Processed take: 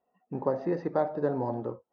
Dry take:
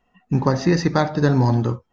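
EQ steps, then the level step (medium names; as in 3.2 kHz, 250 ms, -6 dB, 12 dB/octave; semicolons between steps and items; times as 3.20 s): band-pass filter 560 Hz, Q 1.8; distance through air 100 m; -3.5 dB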